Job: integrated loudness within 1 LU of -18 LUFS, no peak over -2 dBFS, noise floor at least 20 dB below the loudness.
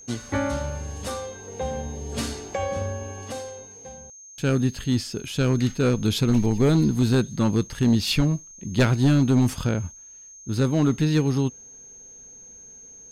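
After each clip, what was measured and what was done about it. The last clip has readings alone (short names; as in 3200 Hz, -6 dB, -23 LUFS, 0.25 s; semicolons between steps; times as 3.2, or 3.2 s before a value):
clipped 0.8%; flat tops at -12.5 dBFS; steady tone 6400 Hz; tone level -43 dBFS; loudness -24.0 LUFS; peak -12.5 dBFS; loudness target -18.0 LUFS
-> clip repair -12.5 dBFS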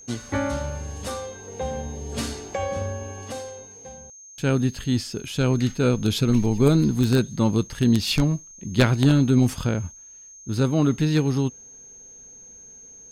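clipped 0.0%; steady tone 6400 Hz; tone level -43 dBFS
-> notch 6400 Hz, Q 30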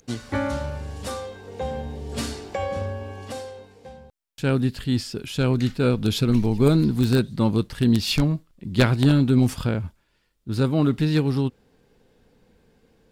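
steady tone none; loudness -23.0 LUFS; peak -3.5 dBFS; loudness target -18.0 LUFS
-> gain +5 dB; limiter -2 dBFS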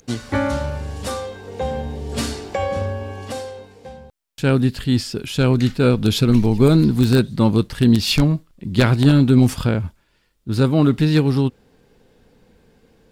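loudness -18.5 LUFS; peak -2.0 dBFS; noise floor -62 dBFS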